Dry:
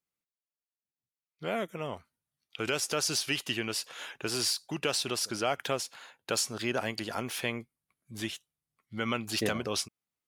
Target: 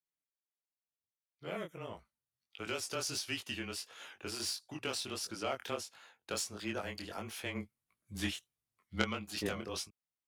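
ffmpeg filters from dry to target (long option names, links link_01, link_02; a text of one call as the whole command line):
ffmpeg -i in.wav -filter_complex "[0:a]asplit=3[link_01][link_02][link_03];[link_01]afade=type=out:start_time=7.54:duration=0.02[link_04];[link_02]acontrast=72,afade=type=in:start_time=7.54:duration=0.02,afade=type=out:start_time=9.01:duration=0.02[link_05];[link_03]afade=type=in:start_time=9.01:duration=0.02[link_06];[link_04][link_05][link_06]amix=inputs=3:normalize=0,afreqshift=-21,aeval=exprs='0.282*(cos(1*acos(clip(val(0)/0.282,-1,1)))-cos(1*PI/2))+0.0891*(cos(3*acos(clip(val(0)/0.282,-1,1)))-cos(3*PI/2))+0.0158*(cos(5*acos(clip(val(0)/0.282,-1,1)))-cos(5*PI/2))+0.00224*(cos(7*acos(clip(val(0)/0.282,-1,1)))-cos(7*PI/2))':channel_layout=same,flanger=delay=18:depth=6:speed=1.5,volume=5.5dB" out.wav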